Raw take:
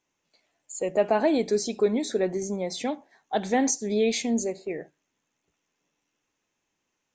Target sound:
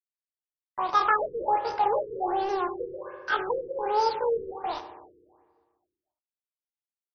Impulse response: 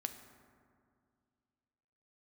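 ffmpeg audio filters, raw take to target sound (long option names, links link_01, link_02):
-filter_complex "[0:a]acontrast=26,asetrate=88200,aresample=44100,atempo=0.5,aresample=16000,acrusher=bits=4:mix=0:aa=0.5,aresample=44100[link_01];[1:a]atrim=start_sample=2205,asetrate=61740,aresample=44100[link_02];[link_01][link_02]afir=irnorm=-1:irlink=0,afftfilt=real='re*lt(b*sr/1024,480*pow(6300/480,0.5+0.5*sin(2*PI*1.3*pts/sr)))':imag='im*lt(b*sr/1024,480*pow(6300/480,0.5+0.5*sin(2*PI*1.3*pts/sr)))':win_size=1024:overlap=0.75"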